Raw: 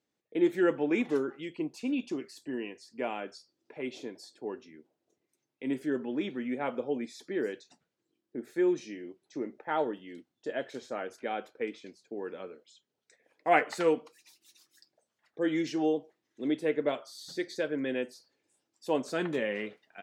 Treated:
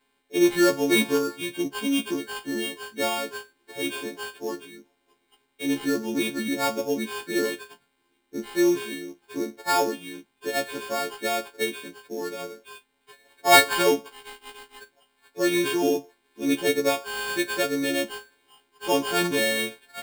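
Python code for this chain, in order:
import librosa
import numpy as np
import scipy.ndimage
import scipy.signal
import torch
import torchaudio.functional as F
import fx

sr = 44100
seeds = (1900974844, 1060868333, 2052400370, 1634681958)

y = fx.freq_snap(x, sr, grid_st=4)
y = fx.sample_hold(y, sr, seeds[0], rate_hz=6000.0, jitter_pct=0)
y = fx.notch(y, sr, hz=600.0, q=12.0)
y = y * librosa.db_to_amplitude(6.0)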